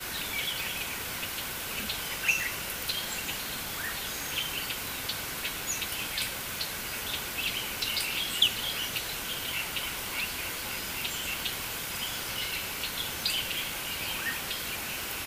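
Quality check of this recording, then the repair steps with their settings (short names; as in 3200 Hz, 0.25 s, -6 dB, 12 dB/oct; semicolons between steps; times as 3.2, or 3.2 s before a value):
tick 33 1/3 rpm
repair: de-click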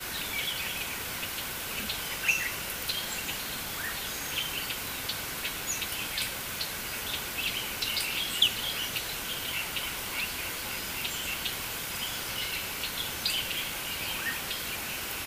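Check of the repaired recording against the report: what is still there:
none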